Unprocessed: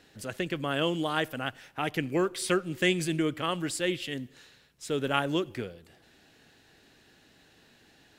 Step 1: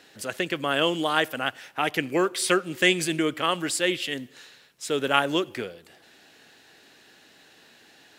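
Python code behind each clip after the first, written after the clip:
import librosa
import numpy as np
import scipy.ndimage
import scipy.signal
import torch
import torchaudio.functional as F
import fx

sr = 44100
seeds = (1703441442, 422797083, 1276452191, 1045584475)

y = fx.highpass(x, sr, hz=420.0, slope=6)
y = y * librosa.db_to_amplitude(7.0)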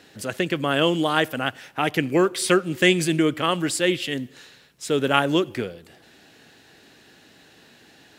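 y = fx.low_shelf(x, sr, hz=280.0, db=10.0)
y = y * librosa.db_to_amplitude(1.0)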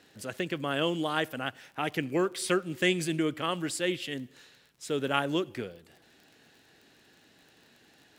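y = fx.dmg_crackle(x, sr, seeds[0], per_s=33.0, level_db=-36.0)
y = y * librosa.db_to_amplitude(-8.5)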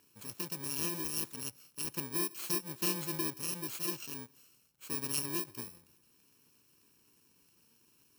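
y = fx.bit_reversed(x, sr, seeds[1], block=64)
y = y * librosa.db_to_amplitude(-7.0)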